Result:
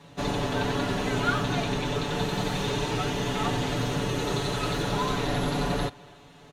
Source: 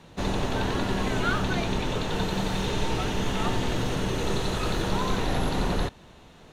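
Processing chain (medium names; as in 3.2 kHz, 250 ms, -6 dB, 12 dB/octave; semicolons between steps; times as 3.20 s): high-pass 59 Hz 6 dB/octave; comb 7 ms, depth 90%; speakerphone echo 280 ms, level -23 dB; trim -2 dB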